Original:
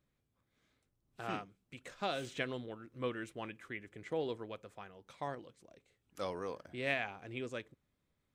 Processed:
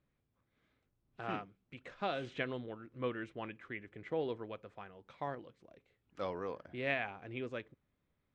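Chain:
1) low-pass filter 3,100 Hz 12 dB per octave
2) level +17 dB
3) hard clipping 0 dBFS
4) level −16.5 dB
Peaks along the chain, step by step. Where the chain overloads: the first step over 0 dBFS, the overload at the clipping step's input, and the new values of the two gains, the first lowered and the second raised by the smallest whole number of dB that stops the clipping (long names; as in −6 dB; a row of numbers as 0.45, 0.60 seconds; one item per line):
−21.5, −4.5, −4.5, −21.0 dBFS
no step passes full scale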